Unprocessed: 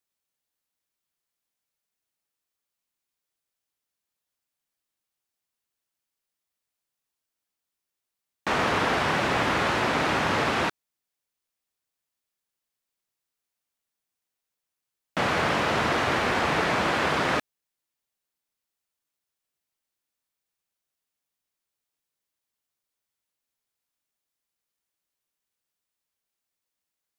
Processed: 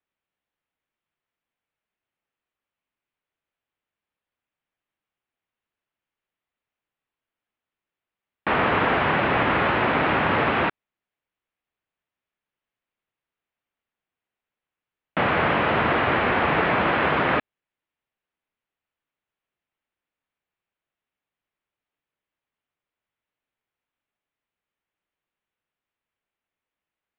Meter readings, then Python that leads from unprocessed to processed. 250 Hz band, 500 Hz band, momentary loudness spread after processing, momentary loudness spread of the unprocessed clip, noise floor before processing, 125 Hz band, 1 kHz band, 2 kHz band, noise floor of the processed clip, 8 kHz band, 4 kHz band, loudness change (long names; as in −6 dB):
+3.5 dB, +3.5 dB, 5 LU, 5 LU, below −85 dBFS, +3.5 dB, +3.5 dB, +3.5 dB, below −85 dBFS, below −30 dB, −2.0 dB, +3.0 dB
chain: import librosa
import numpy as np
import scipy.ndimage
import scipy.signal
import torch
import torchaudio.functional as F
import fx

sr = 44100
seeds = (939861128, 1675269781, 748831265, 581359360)

y = scipy.signal.sosfilt(scipy.signal.cheby2(4, 50, 7200.0, 'lowpass', fs=sr, output='sos'), x)
y = y * librosa.db_to_amplitude(3.5)